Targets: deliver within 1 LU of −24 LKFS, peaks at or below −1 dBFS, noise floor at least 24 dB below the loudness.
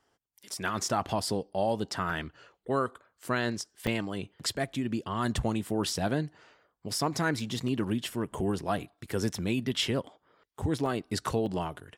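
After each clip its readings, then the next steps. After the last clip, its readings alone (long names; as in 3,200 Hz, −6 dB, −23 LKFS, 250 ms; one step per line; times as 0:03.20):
number of dropouts 6; longest dropout 2.7 ms; integrated loudness −31.5 LKFS; sample peak −15.5 dBFS; target loudness −24.0 LKFS
→ repair the gap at 0:02.10/0:03.87/0:07.68/0:09.29/0:10.86/0:11.46, 2.7 ms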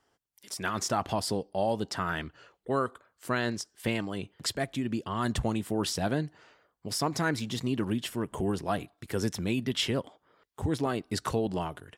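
number of dropouts 0; integrated loudness −31.5 LKFS; sample peak −15.5 dBFS; target loudness −24.0 LKFS
→ level +7.5 dB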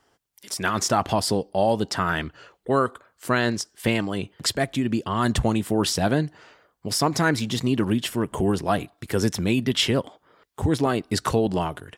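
integrated loudness −24.0 LKFS; sample peak −8.0 dBFS; background noise floor −69 dBFS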